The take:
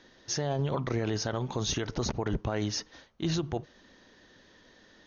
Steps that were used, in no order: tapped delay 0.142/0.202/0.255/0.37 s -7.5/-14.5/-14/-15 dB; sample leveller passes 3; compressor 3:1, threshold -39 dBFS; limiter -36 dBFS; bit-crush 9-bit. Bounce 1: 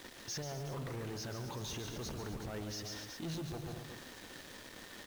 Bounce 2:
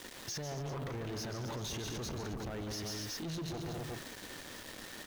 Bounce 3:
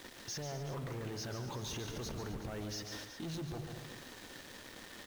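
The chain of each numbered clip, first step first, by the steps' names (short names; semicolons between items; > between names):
sample leveller > compressor > tapped delay > limiter > bit-crush; tapped delay > bit-crush > compressor > limiter > sample leveller; sample leveller > limiter > bit-crush > tapped delay > compressor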